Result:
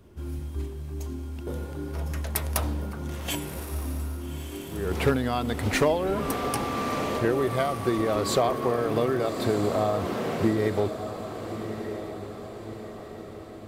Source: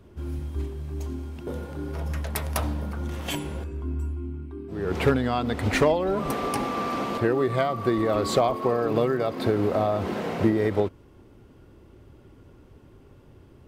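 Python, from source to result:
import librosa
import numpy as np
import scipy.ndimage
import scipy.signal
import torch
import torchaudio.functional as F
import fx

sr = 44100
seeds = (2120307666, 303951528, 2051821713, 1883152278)

p1 = fx.high_shelf(x, sr, hz=5800.0, db=7.5)
p2 = p1 + fx.echo_diffused(p1, sr, ms=1265, feedback_pct=52, wet_db=-9, dry=0)
y = p2 * 10.0 ** (-2.0 / 20.0)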